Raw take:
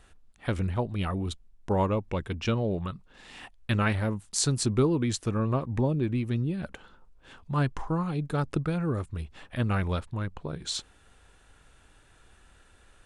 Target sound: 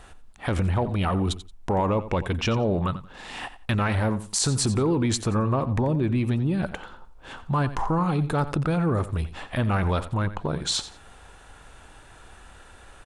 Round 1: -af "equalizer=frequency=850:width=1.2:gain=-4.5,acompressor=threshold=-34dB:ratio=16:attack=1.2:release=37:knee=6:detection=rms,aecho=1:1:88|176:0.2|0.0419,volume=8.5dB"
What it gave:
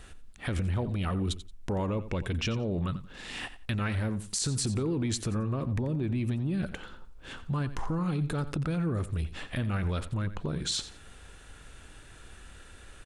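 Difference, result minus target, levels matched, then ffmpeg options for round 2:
downward compressor: peak gain reduction +6 dB; 1,000 Hz band −5.5 dB
-af "equalizer=frequency=850:width=1.2:gain=6,acompressor=threshold=-26.5dB:ratio=16:attack=1.2:release=37:knee=6:detection=rms,aecho=1:1:88|176:0.2|0.0419,volume=8.5dB"

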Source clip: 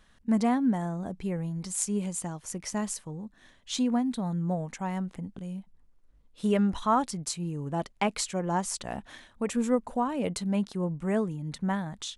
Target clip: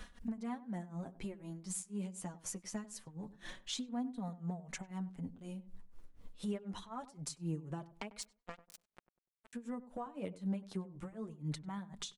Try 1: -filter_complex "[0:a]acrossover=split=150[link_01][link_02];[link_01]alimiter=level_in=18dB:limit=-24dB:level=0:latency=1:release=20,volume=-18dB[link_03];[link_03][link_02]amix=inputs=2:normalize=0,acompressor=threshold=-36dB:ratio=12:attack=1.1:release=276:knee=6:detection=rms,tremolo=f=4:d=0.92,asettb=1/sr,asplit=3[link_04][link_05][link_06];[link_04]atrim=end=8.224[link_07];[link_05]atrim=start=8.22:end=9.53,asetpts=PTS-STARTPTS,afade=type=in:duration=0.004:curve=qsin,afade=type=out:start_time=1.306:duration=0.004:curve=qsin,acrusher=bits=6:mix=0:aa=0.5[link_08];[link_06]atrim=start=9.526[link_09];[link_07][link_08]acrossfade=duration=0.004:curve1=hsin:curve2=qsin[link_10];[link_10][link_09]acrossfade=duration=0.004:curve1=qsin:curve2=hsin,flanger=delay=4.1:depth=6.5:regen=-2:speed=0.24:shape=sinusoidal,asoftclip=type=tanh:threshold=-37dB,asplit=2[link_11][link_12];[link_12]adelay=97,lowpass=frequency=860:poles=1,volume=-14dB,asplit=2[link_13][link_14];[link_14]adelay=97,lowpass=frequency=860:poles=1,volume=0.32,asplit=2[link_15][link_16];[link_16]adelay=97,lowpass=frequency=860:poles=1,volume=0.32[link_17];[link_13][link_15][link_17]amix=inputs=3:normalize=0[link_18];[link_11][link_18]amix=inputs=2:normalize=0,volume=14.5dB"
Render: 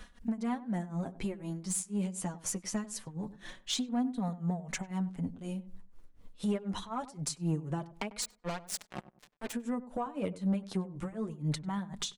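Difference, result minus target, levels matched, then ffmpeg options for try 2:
downward compressor: peak gain reduction −8 dB
-filter_complex "[0:a]acrossover=split=150[link_01][link_02];[link_01]alimiter=level_in=18dB:limit=-24dB:level=0:latency=1:release=20,volume=-18dB[link_03];[link_03][link_02]amix=inputs=2:normalize=0,acompressor=threshold=-45dB:ratio=12:attack=1.1:release=276:knee=6:detection=rms,tremolo=f=4:d=0.92,asettb=1/sr,asplit=3[link_04][link_05][link_06];[link_04]atrim=end=8.224[link_07];[link_05]atrim=start=8.22:end=9.53,asetpts=PTS-STARTPTS,afade=type=in:duration=0.004:curve=qsin,afade=type=out:start_time=1.306:duration=0.004:curve=qsin,acrusher=bits=6:mix=0:aa=0.5[link_08];[link_06]atrim=start=9.526[link_09];[link_07][link_08]acrossfade=duration=0.004:curve1=hsin:curve2=qsin[link_10];[link_10][link_09]acrossfade=duration=0.004:curve1=qsin:curve2=hsin,flanger=delay=4.1:depth=6.5:regen=-2:speed=0.24:shape=sinusoidal,asoftclip=type=tanh:threshold=-37dB,asplit=2[link_11][link_12];[link_12]adelay=97,lowpass=frequency=860:poles=1,volume=-14dB,asplit=2[link_13][link_14];[link_14]adelay=97,lowpass=frequency=860:poles=1,volume=0.32,asplit=2[link_15][link_16];[link_16]adelay=97,lowpass=frequency=860:poles=1,volume=0.32[link_17];[link_13][link_15][link_17]amix=inputs=3:normalize=0[link_18];[link_11][link_18]amix=inputs=2:normalize=0,volume=14.5dB"

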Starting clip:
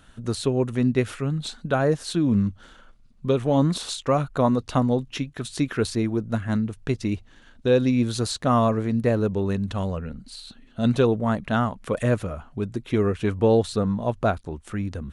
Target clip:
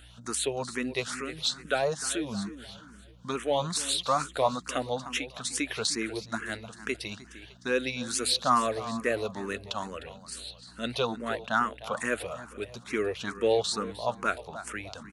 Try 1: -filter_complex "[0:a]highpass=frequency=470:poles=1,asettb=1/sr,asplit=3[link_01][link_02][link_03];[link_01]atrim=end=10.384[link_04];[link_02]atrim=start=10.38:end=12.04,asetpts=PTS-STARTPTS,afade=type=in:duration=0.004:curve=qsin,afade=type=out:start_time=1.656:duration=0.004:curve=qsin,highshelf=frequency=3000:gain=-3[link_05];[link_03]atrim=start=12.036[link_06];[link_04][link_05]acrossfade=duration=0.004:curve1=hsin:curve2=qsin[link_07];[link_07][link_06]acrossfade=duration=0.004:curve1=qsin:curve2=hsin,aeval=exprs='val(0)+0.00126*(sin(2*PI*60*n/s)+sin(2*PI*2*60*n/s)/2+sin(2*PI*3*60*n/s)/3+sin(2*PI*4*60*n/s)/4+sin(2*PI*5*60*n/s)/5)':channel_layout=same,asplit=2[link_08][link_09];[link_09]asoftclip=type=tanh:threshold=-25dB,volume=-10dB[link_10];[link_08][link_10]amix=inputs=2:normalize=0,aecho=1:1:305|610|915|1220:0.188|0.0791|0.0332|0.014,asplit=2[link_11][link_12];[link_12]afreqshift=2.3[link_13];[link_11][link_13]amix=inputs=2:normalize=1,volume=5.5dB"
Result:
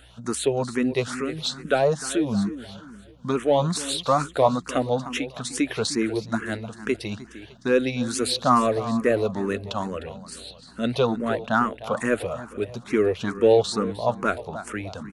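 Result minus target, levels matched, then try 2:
2,000 Hz band −4.0 dB
-filter_complex "[0:a]highpass=frequency=1800:poles=1,asettb=1/sr,asplit=3[link_01][link_02][link_03];[link_01]atrim=end=10.384[link_04];[link_02]atrim=start=10.38:end=12.04,asetpts=PTS-STARTPTS,afade=type=in:duration=0.004:curve=qsin,afade=type=out:start_time=1.656:duration=0.004:curve=qsin,highshelf=frequency=3000:gain=-3[link_05];[link_03]atrim=start=12.036[link_06];[link_04][link_05]acrossfade=duration=0.004:curve1=hsin:curve2=qsin[link_07];[link_07][link_06]acrossfade=duration=0.004:curve1=qsin:curve2=hsin,aeval=exprs='val(0)+0.00126*(sin(2*PI*60*n/s)+sin(2*PI*2*60*n/s)/2+sin(2*PI*3*60*n/s)/3+sin(2*PI*4*60*n/s)/4+sin(2*PI*5*60*n/s)/5)':channel_layout=same,asplit=2[link_08][link_09];[link_09]asoftclip=type=tanh:threshold=-25dB,volume=-10dB[link_10];[link_08][link_10]amix=inputs=2:normalize=0,aecho=1:1:305|610|915|1220:0.188|0.0791|0.0332|0.014,asplit=2[link_11][link_12];[link_12]afreqshift=2.3[link_13];[link_11][link_13]amix=inputs=2:normalize=1,volume=5.5dB"

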